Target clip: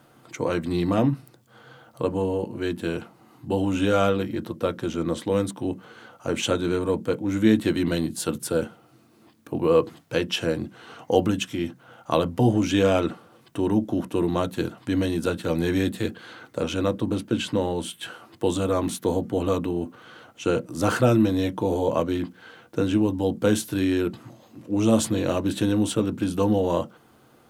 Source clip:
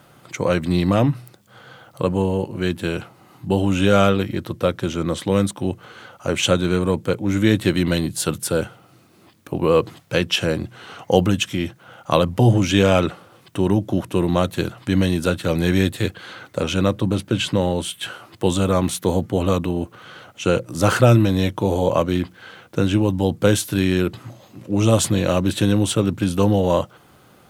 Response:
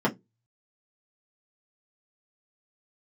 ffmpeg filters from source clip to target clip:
-filter_complex "[0:a]asplit=2[a][b];[1:a]atrim=start_sample=2205,lowpass=f=3.9k:w=0.5412,lowpass=f=3.9k:w=1.3066[c];[b][c]afir=irnorm=-1:irlink=0,volume=-21dB[d];[a][d]amix=inputs=2:normalize=0,volume=-6.5dB"

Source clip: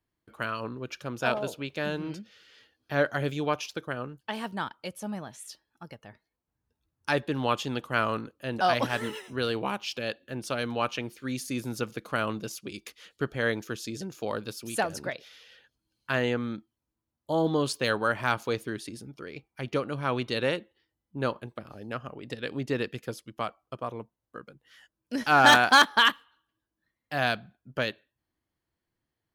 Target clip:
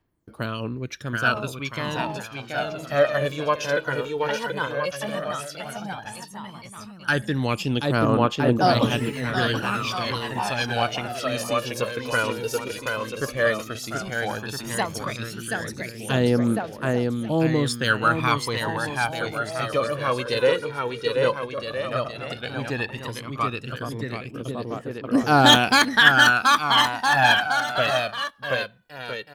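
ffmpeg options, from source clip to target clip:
-af "aecho=1:1:730|1314|1781|2155|2454:0.631|0.398|0.251|0.158|0.1,aphaser=in_gain=1:out_gain=1:delay=2.2:decay=0.66:speed=0.12:type=triangular,volume=2.5dB"

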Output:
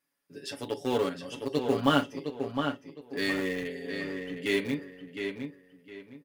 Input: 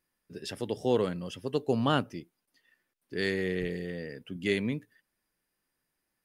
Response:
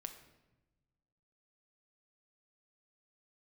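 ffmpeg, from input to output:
-filter_complex "[0:a]highpass=f=220:p=1[a];[1:a]atrim=start_sample=2205,atrim=end_sample=4410,asetrate=74970,aresample=44100[b];[a][b]afir=irnorm=-1:irlink=0,asplit=2[c][d];[d]aeval=exprs='val(0)*gte(abs(val(0)),0.0168)':c=same,volume=-9dB[e];[c][e]amix=inputs=2:normalize=0,aecho=1:1:7.1:0.87,asplit=2[f][g];[g]adelay=711,lowpass=f=3.7k:p=1,volume=-6dB,asplit=2[h][i];[i]adelay=711,lowpass=f=3.7k:p=1,volume=0.28,asplit=2[j][k];[k]adelay=711,lowpass=f=3.7k:p=1,volume=0.28,asplit=2[l][m];[m]adelay=711,lowpass=f=3.7k:p=1,volume=0.28[n];[f][h][j][l][n]amix=inputs=5:normalize=0,volume=6.5dB"

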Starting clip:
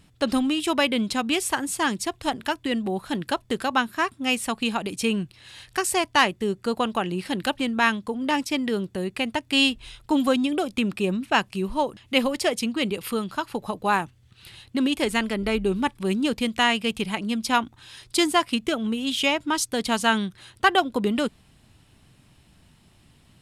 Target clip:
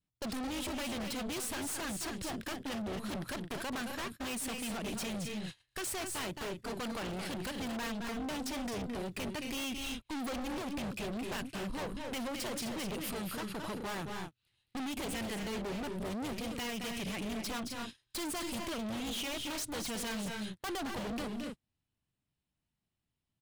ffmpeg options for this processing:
-af "aeval=exprs='(tanh(31.6*val(0)+0.35)-tanh(0.35))/31.6':c=same,aecho=1:1:218.7|256.6:0.355|0.316,adynamicequalizer=threshold=0.00316:dfrequency=890:dqfactor=1.8:tfrequency=890:tqfactor=1.8:attack=5:release=100:ratio=0.375:range=2.5:mode=cutabove:tftype=bell,agate=range=-31dB:threshold=-40dB:ratio=16:detection=peak,acompressor=threshold=-30dB:ratio=6,aeval=exprs='0.0224*(abs(mod(val(0)/0.0224+3,4)-2)-1)':c=same"

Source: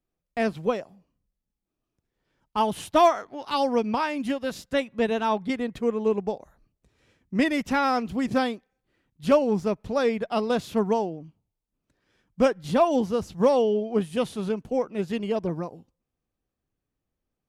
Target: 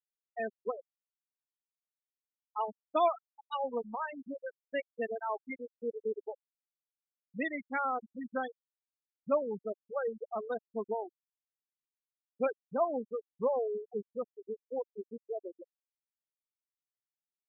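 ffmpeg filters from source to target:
-af "highpass=f=730:p=1,afftfilt=real='re*gte(hypot(re,im),0.126)':imag='im*gte(hypot(re,im),0.126)':win_size=1024:overlap=0.75,equalizer=f=940:t=o:w=0.4:g=-4,volume=-5dB"

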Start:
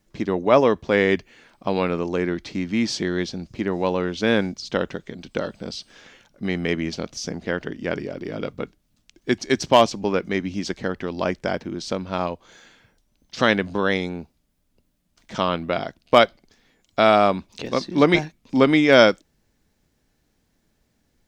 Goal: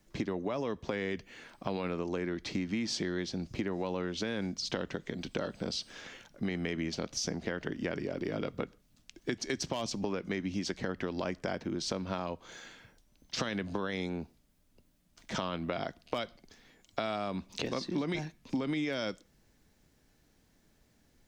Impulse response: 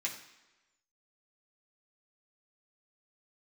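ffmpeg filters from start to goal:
-filter_complex "[0:a]acrossover=split=250|3000[a][b][c];[b]acompressor=threshold=-23dB:ratio=2[d];[a][d][c]amix=inputs=3:normalize=0,alimiter=limit=-15dB:level=0:latency=1:release=38,acompressor=threshold=-31dB:ratio=6,asplit=2[e][f];[1:a]atrim=start_sample=2205,afade=t=out:st=0.19:d=0.01,atrim=end_sample=8820,asetrate=35280,aresample=44100[g];[f][g]afir=irnorm=-1:irlink=0,volume=-23dB[h];[e][h]amix=inputs=2:normalize=0"

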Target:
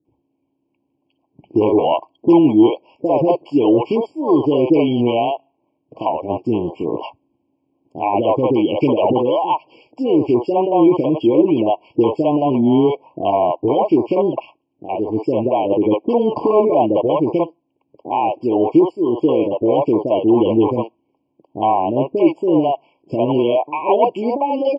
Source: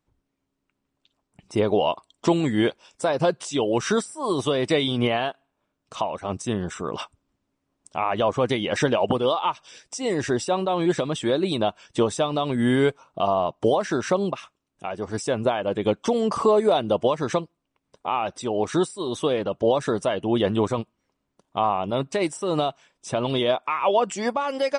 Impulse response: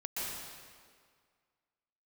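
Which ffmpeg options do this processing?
-filter_complex "[0:a]acrossover=split=830[a][b];[a]aeval=exprs='0.355*sin(PI/2*2.24*val(0)/0.355)':c=same[c];[c][b]amix=inputs=2:normalize=0,highpass=150,equalizer=f=190:t=q:w=4:g=-9,equalizer=f=320:t=q:w=4:g=8,equalizer=f=830:t=q:w=4:g=4,equalizer=f=1.3k:t=q:w=4:g=-5,equalizer=f=2k:t=q:w=4:g=4,lowpass=f=3.8k:w=0.5412,lowpass=f=3.8k:w=1.3066,acrossover=split=490[d][e];[e]adelay=50[f];[d][f]amix=inputs=2:normalize=0,afftfilt=real='re*eq(mod(floor(b*sr/1024/1100),2),0)':imag='im*eq(mod(floor(b*sr/1024/1100),2),0)':win_size=1024:overlap=0.75"

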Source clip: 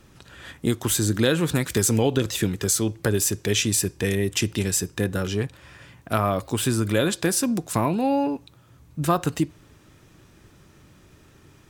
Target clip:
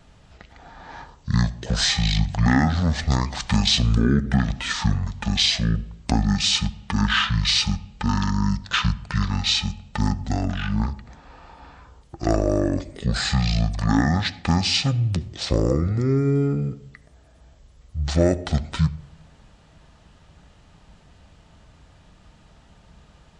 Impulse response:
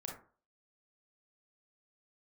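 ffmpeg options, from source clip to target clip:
-filter_complex "[0:a]aeval=exprs='0.562*(cos(1*acos(clip(val(0)/0.562,-1,1)))-cos(1*PI/2))+0.0282*(cos(5*acos(clip(val(0)/0.562,-1,1)))-cos(5*PI/2))+0.0178*(cos(7*acos(clip(val(0)/0.562,-1,1)))-cos(7*PI/2))':c=same,asplit=2[a][b];[1:a]atrim=start_sample=2205[c];[b][c]afir=irnorm=-1:irlink=0,volume=-11.5dB[d];[a][d]amix=inputs=2:normalize=0,asetrate=22050,aresample=44100"

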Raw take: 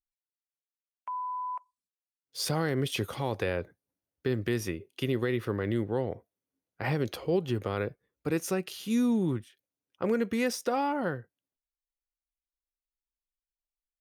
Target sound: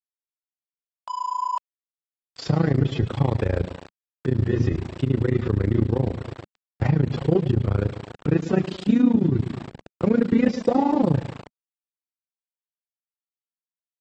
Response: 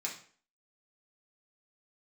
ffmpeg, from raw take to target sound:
-filter_complex "[0:a]asubboost=boost=4:cutoff=220,acrossover=split=630|6500[a][b][c];[b]asoftclip=type=tanh:threshold=-35.5dB[d];[a][d][c]amix=inputs=3:normalize=0,asettb=1/sr,asplit=3[e][f][g];[e]atrim=end=10.484[h];[f]atrim=start=10.48:end=11.15,asetpts=PTS-STARTPTS,afade=t=in:d=0.004:c=qsin,afade=t=out:st=0.666:d=0.004:c=qsin,asuperstop=centerf=2100:order=20:qfactor=0.95[i];[g]atrim=start=11.146[j];[h][i]acrossfade=d=0.004:c1=hsin:c2=qsin[k];[k][j]acrossfade=d=0.004:c1=qsin:c2=hsin,bandreject=f=60:t=h:w=6,bandreject=f=120:t=h:w=6,bandreject=f=180:t=h:w=6,bandreject=f=240:t=h:w=6,aecho=1:1:115|230|345|460|575|690:0.211|0.118|0.0663|0.0371|0.0208|0.0116,asplit=2[l][m];[m]adynamicsmooth=sensitivity=2.5:basefreq=1k,volume=1dB[n];[l][n]amix=inputs=2:normalize=0,aeval=exprs='val(0)*gte(abs(val(0)),0.0141)':c=same,equalizer=f=200:t=o:w=0.33:g=-4,equalizer=f=6.3k:t=o:w=0.33:g=-11,equalizer=f=10k:t=o:w=0.33:g=-6,alimiter=limit=-16dB:level=0:latency=1:release=191,highpass=f=74:p=1,tremolo=f=28:d=0.947,volume=8dB" -ar 48000 -c:a aac -b:a 24k

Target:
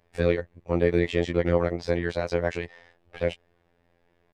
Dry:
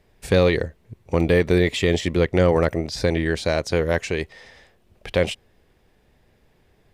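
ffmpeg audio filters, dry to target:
-filter_complex "[0:a]asplit=2[a][b];[b]highpass=f=720:p=1,volume=7dB,asoftclip=type=tanh:threshold=-6.5dB[c];[a][c]amix=inputs=2:normalize=0,lowpass=f=1.3k:p=1,volume=-6dB,atempo=1.6,afftfilt=real='hypot(re,im)*cos(PI*b)':imag='0':win_size=2048:overlap=0.75"

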